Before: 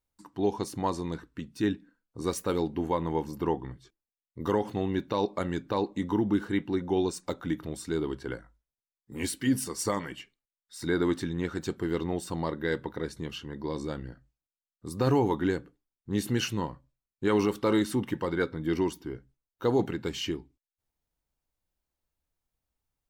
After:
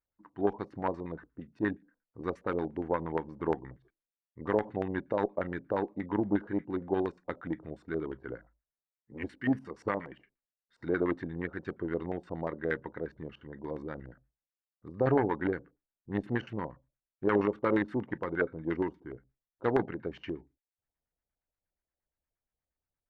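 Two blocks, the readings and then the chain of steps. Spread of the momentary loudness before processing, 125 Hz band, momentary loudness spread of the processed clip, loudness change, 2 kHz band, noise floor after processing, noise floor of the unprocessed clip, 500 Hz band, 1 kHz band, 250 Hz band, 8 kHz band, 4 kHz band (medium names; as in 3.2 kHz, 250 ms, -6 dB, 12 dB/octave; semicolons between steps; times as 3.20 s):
12 LU, -5.5 dB, 15 LU, -3.0 dB, -0.5 dB, under -85 dBFS, under -85 dBFS, -2.0 dB, -2.5 dB, -4.0 dB, under -30 dB, under -15 dB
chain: Chebyshev shaper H 3 -16 dB, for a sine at -15 dBFS; LFO low-pass square 8.5 Hz 630–1800 Hz; wow and flutter 25 cents; trim -2 dB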